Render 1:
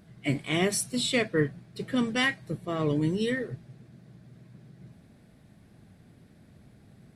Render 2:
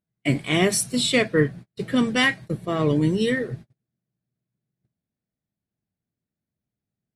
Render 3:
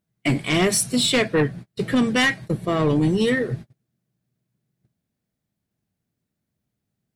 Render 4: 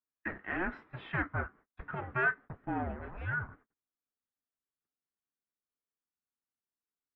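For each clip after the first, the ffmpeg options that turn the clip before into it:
-af "agate=range=-38dB:threshold=-42dB:ratio=16:detection=peak,volume=6dB"
-filter_complex "[0:a]asplit=2[a][b];[b]acompressor=threshold=-29dB:ratio=6,volume=0dB[c];[a][c]amix=inputs=2:normalize=0,aeval=exprs='0.631*sin(PI/2*2*val(0)/0.631)':c=same,volume=-9dB"
-af "aeval=exprs='0.237*(cos(1*acos(clip(val(0)/0.237,-1,1)))-cos(1*PI/2))+0.0133*(cos(7*acos(clip(val(0)/0.237,-1,1)))-cos(7*PI/2))':c=same,highpass=f=550:t=q:w=0.5412,highpass=f=550:t=q:w=1.307,lowpass=f=2.1k:t=q:w=0.5176,lowpass=f=2.1k:t=q:w=0.7071,lowpass=f=2.1k:t=q:w=1.932,afreqshift=-370,crystalizer=i=3.5:c=0,volume=-9dB"

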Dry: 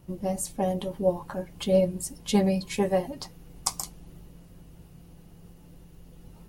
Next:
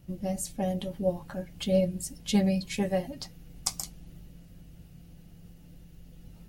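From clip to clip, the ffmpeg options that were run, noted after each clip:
-af "equalizer=f=400:t=o:w=0.67:g=-7,equalizer=f=1k:t=o:w=0.67:g=-11,equalizer=f=10k:t=o:w=0.67:g=-4"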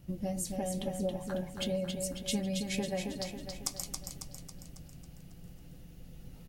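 -filter_complex "[0:a]acompressor=threshold=-31dB:ratio=6,asplit=2[a][b];[b]aecho=0:1:274|548|822|1096|1370|1644|1918:0.562|0.292|0.152|0.0791|0.0411|0.0214|0.0111[c];[a][c]amix=inputs=2:normalize=0"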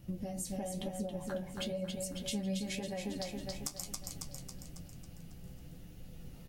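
-af "acompressor=threshold=-36dB:ratio=6,flanger=delay=9.2:depth=6.4:regen=47:speed=1:shape=sinusoidal,volume=5dB"

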